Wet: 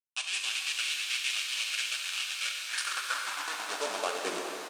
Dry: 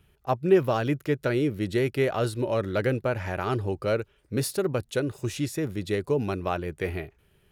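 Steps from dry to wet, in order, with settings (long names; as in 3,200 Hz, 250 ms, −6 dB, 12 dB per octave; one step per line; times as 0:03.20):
hold until the input has moved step −24 dBFS
parametric band 410 Hz −14.5 dB 1.9 octaves
notch filter 2,000 Hz, Q 7
high-pass filter sweep 2,600 Hz → 250 Hz, 0:03.76–0:07.48
tempo change 1.6×
linear-phase brick-wall band-pass 180–10,000 Hz
reverb with rising layers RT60 3.6 s, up +7 semitones, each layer −8 dB, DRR 0.5 dB
level +1.5 dB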